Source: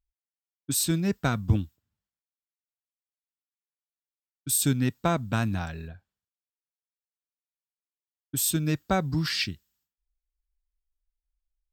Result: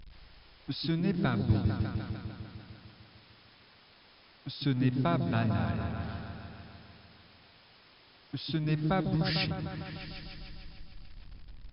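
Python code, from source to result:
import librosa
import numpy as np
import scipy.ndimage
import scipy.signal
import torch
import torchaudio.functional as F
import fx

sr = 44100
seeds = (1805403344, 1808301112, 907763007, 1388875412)

y = x + 0.5 * 10.0 ** (-36.5 / 20.0) * np.sign(x)
y = fx.brickwall_lowpass(y, sr, high_hz=5300.0)
y = fx.echo_opening(y, sr, ms=150, hz=400, octaves=1, feedback_pct=70, wet_db=-3)
y = y * 10.0 ** (-5.5 / 20.0)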